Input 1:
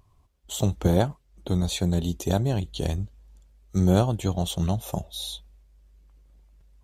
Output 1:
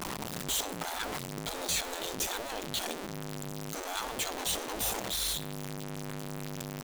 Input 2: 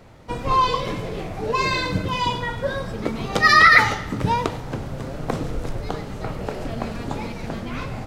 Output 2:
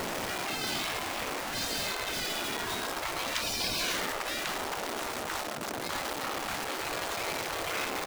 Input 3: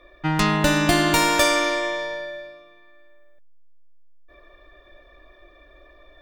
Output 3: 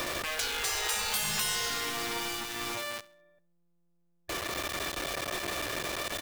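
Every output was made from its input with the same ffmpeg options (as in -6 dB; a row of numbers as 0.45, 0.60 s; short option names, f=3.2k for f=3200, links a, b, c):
-af "aeval=exprs='val(0)+0.5*0.0794*sgn(val(0))':c=same,aecho=1:1:68|136|204:0.0841|0.0303|0.0109,afftfilt=real='re*lt(hypot(re,im),0.178)':imag='im*lt(hypot(re,im),0.178)':win_size=1024:overlap=0.75,volume=-4dB"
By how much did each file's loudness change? -8.0, -11.0, -11.5 LU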